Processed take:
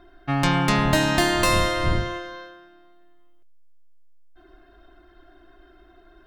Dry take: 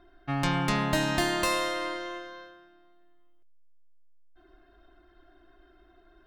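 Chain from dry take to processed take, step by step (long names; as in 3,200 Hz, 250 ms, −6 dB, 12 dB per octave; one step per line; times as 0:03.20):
0:00.75–0:02.34: wind on the microphone 110 Hz −32 dBFS
level +6.5 dB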